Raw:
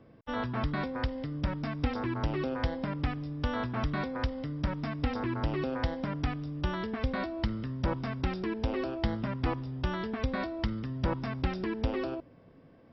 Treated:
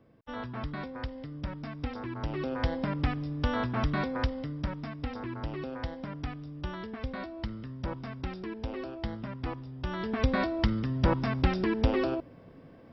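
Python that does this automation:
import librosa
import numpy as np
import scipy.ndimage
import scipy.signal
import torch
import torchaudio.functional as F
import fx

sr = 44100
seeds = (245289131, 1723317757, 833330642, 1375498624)

y = fx.gain(x, sr, db=fx.line((2.1, -5.0), (2.74, 2.5), (4.2, 2.5), (4.97, -5.0), (9.78, -5.0), (10.21, 5.0)))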